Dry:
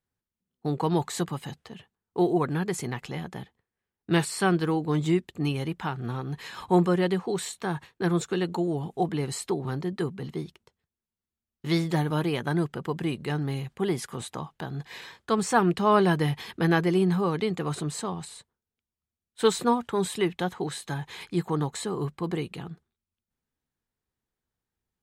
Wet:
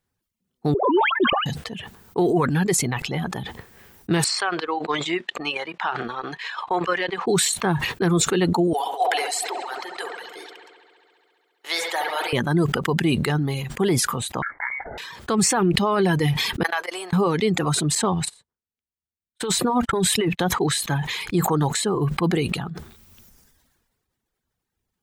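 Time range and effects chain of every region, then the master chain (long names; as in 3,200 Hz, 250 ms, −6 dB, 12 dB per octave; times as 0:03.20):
0:00.74–0:01.46: three sine waves on the formant tracks + notch filter 1,900 Hz, Q 5 + all-pass dispersion highs, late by 130 ms, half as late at 1,800 Hz
0:04.24–0:07.27: band-pass filter 730–3,700 Hz + transient designer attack +6 dB, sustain −9 dB
0:08.73–0:12.33: high-pass filter 640 Hz 24 dB per octave + parametric band 1,100 Hz −4.5 dB 0.62 octaves + delay with a low-pass on its return 68 ms, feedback 84%, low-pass 3,300 Hz, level −6 dB
0:14.42–0:14.98: Butterworth high-pass 280 Hz 48 dB per octave + voice inversion scrambler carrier 2,500 Hz
0:16.63–0:17.13: high-pass filter 610 Hz 24 dB per octave + noise gate −33 dBFS, range −28 dB + downward compressor 4 to 1, threshold −27 dBFS
0:17.95–0:20.46: noise gate −40 dBFS, range −48 dB + compressor whose output falls as the input rises −28 dBFS
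whole clip: reverb reduction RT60 1.1 s; brickwall limiter −20.5 dBFS; level that may fall only so fast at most 36 dB per second; level +8.5 dB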